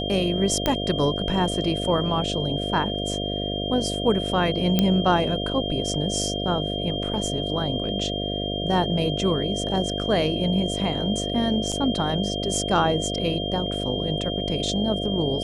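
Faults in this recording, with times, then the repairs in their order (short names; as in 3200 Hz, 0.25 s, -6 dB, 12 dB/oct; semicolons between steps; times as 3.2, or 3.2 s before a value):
buzz 50 Hz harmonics 14 -29 dBFS
tone 3200 Hz -30 dBFS
0.66 pop -7 dBFS
4.79 pop -6 dBFS
11.72–11.73 gap 5.5 ms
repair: de-click; notch 3200 Hz, Q 30; de-hum 50 Hz, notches 14; interpolate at 11.72, 5.5 ms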